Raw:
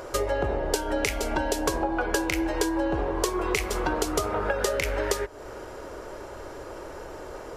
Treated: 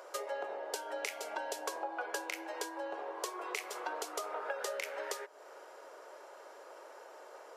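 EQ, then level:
four-pole ladder high-pass 430 Hz, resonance 20%
−6.0 dB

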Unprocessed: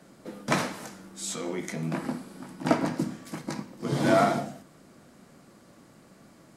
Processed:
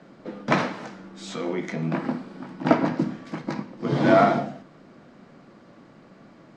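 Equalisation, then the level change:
high-frequency loss of the air 160 metres
parametric band 63 Hz −11 dB 1.1 octaves
high-shelf EQ 9,200 Hz −7 dB
+5.5 dB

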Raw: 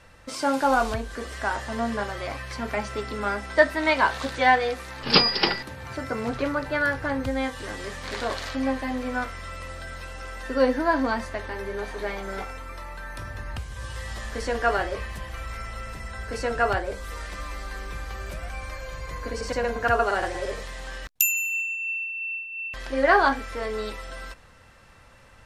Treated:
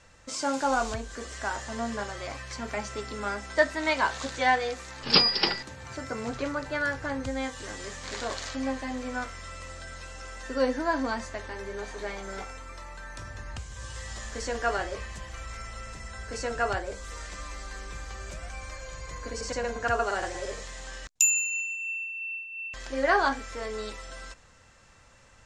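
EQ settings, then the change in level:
low-pass with resonance 7,100 Hz, resonance Q 3.4
−5.0 dB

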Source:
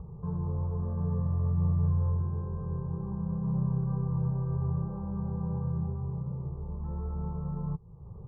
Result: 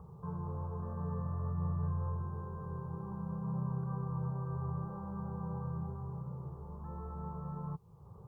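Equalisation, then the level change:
high-pass filter 72 Hz
tilt shelving filter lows −8.5 dB
+1.0 dB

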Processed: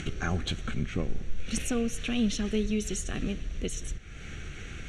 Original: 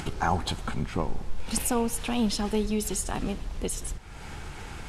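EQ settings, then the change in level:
low-pass with resonance 5,700 Hz, resonance Q 9
phaser with its sweep stopped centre 2,200 Hz, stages 4
0.0 dB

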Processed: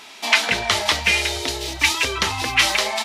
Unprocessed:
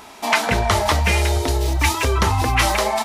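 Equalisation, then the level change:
meter weighting curve D
−5.5 dB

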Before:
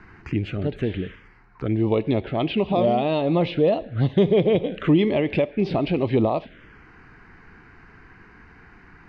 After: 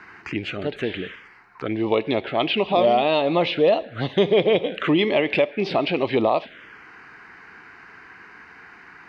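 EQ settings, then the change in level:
high-pass filter 880 Hz 6 dB per octave
+8.0 dB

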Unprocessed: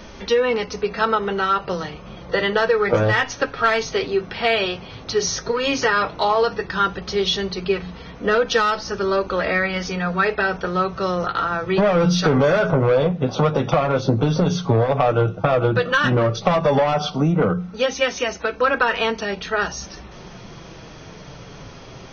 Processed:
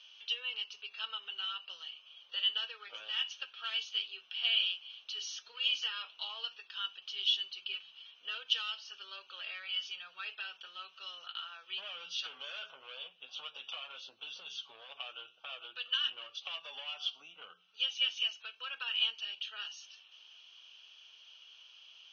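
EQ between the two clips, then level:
four-pole ladder band-pass 3,100 Hz, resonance 85%
parametric band 2,000 Hz −14.5 dB 0.31 octaves
parametric band 4,400 Hz −8.5 dB 2.1 octaves
+3.0 dB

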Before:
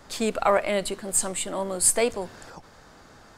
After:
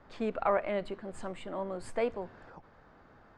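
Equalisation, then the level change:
low-pass filter 2,000 Hz 12 dB per octave
−7.0 dB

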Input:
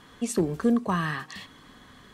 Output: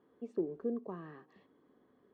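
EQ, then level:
resonant band-pass 400 Hz, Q 2.3
high-frequency loss of the air 54 metres
−7.0 dB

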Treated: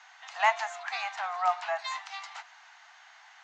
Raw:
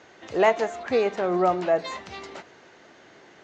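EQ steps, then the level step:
Butterworth high-pass 740 Hz 72 dB per octave
0.0 dB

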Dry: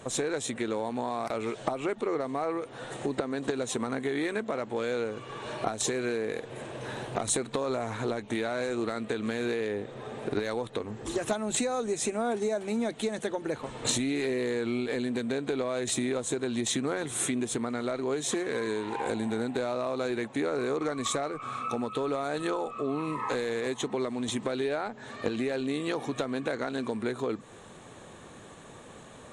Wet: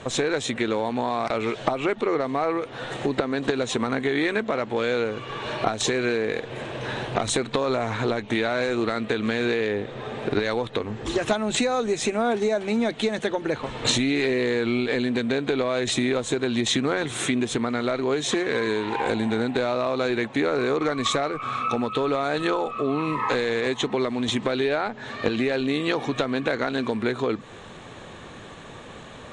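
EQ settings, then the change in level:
low-pass filter 3,400 Hz 12 dB per octave
low-shelf EQ 81 Hz +6 dB
high-shelf EQ 2,500 Hz +11 dB
+5.5 dB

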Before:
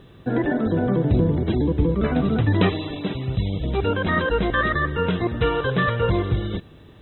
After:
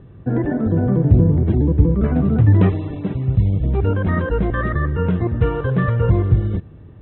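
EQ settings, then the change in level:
Bessel low-pass filter 1,800 Hz, order 4
parametric band 93 Hz +7 dB 1.7 octaves
low-shelf EQ 360 Hz +5 dB
−2.5 dB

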